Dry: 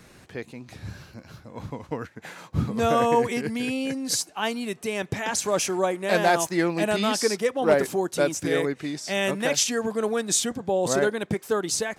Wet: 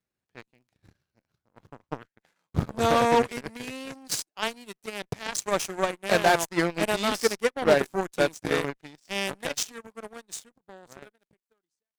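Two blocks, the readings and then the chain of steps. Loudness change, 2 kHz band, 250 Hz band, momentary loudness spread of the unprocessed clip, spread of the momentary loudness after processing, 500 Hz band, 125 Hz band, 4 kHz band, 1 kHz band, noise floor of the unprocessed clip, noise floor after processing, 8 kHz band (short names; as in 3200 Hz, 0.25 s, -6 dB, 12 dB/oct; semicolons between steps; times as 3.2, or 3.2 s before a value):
-2.0 dB, -1.5 dB, -5.0 dB, 17 LU, 18 LU, -3.0 dB, -3.5 dB, -3.0 dB, -1.0 dB, -52 dBFS, under -85 dBFS, -7.0 dB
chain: ending faded out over 3.44 s; crackle 130/s -44 dBFS; added harmonics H 7 -17 dB, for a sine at -9.5 dBFS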